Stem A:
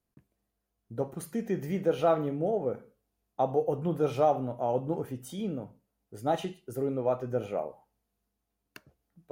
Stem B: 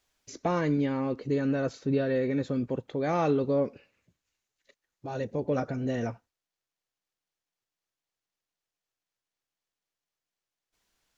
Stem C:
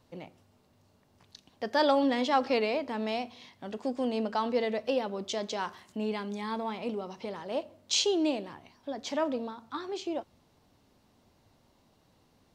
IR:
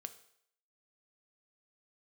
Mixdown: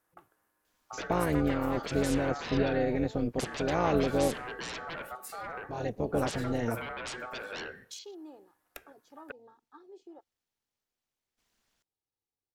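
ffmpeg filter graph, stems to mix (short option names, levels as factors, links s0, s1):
-filter_complex "[0:a]equalizer=f=670:t=o:w=2.2:g=12,aeval=exprs='0.2*sin(PI/2*3.16*val(0)/0.2)':c=same,aeval=exprs='val(0)*sin(2*PI*1000*n/s)':c=same,volume=0.2,asplit=2[s0][s1];[s1]volume=0.422[s2];[1:a]tremolo=f=230:d=0.824,adelay=650,volume=1.33[s3];[2:a]afwtdn=0.0158,aecho=1:1:2.4:0.65,volume=0.119[s4];[s0][s4]amix=inputs=2:normalize=0,equalizer=f=12000:t=o:w=1.7:g=12.5,acompressor=threshold=0.00794:ratio=6,volume=1[s5];[3:a]atrim=start_sample=2205[s6];[s2][s6]afir=irnorm=-1:irlink=0[s7];[s3][s5][s7]amix=inputs=3:normalize=0"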